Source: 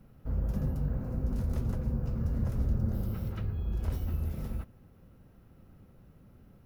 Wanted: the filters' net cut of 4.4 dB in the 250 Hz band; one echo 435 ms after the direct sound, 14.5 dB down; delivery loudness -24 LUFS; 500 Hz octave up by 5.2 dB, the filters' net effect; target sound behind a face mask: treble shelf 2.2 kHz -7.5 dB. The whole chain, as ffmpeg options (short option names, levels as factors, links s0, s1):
-af "equalizer=f=250:t=o:g=-8,equalizer=f=500:t=o:g=8.5,highshelf=f=2200:g=-7.5,aecho=1:1:435:0.188,volume=3.35"